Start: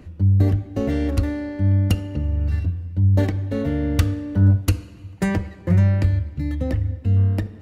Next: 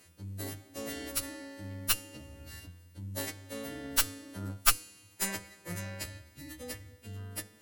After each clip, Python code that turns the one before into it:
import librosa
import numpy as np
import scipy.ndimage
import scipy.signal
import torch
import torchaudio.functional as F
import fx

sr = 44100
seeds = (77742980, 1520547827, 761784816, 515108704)

y = fx.freq_snap(x, sr, grid_st=2)
y = fx.riaa(y, sr, side='recording')
y = fx.cheby_harmonics(y, sr, harmonics=(3, 4), levels_db=(-6, -12), full_scale_db=4.0)
y = y * librosa.db_to_amplitude(-6.0)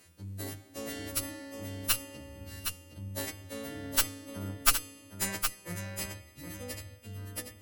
y = x + 10.0 ** (-7.0 / 20.0) * np.pad(x, (int(765 * sr / 1000.0), 0))[:len(x)]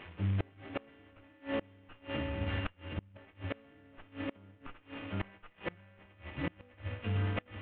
y = fx.cvsd(x, sr, bps=16000)
y = fx.gate_flip(y, sr, shuts_db=-34.0, range_db=-29)
y = y * librosa.db_to_amplitude(11.0)